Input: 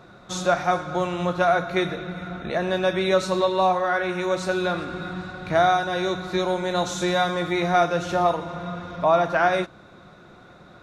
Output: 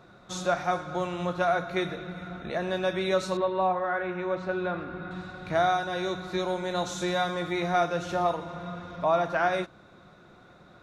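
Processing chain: 3.37–5.11 LPF 2200 Hz 12 dB/oct; gain -5.5 dB

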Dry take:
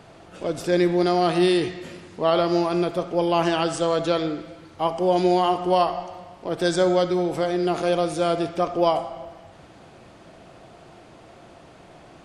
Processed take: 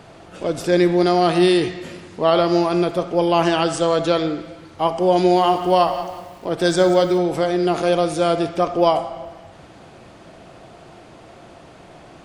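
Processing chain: 5.18–7.18 lo-fi delay 0.18 s, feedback 35%, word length 7-bit, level -13.5 dB; gain +4 dB

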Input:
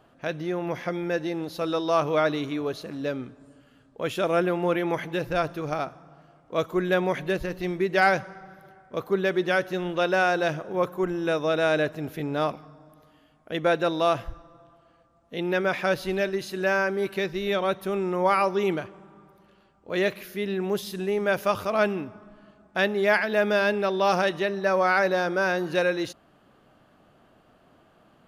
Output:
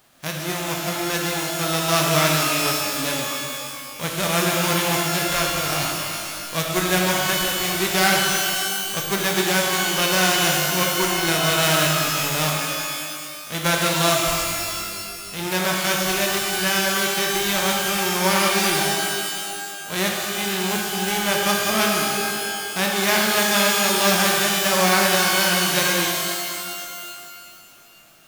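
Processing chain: spectral whitening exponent 0.3; shimmer reverb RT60 2.2 s, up +12 st, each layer -2 dB, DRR 0 dB

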